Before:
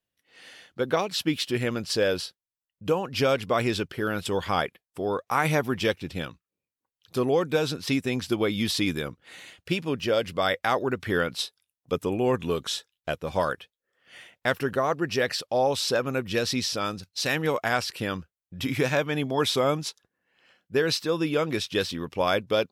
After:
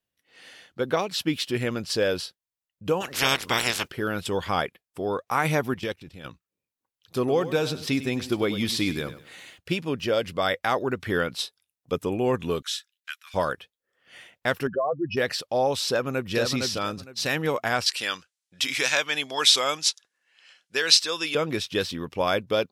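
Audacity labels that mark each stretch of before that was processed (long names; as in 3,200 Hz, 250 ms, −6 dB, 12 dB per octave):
3.000000	3.890000	ceiling on every frequency bin ceiling under each frame's peak by 29 dB
5.740000	6.250000	output level in coarse steps of 14 dB
7.180000	9.580000	feedback echo at a low word length 99 ms, feedback 35%, word length 9 bits, level −13 dB
12.620000	13.340000	Butterworth high-pass 1,400 Hz
14.670000	15.170000	expanding power law on the bin magnitudes exponent 3
15.890000	16.320000	delay throw 460 ms, feedback 20%, level −4 dB
17.860000	21.350000	meter weighting curve ITU-R 468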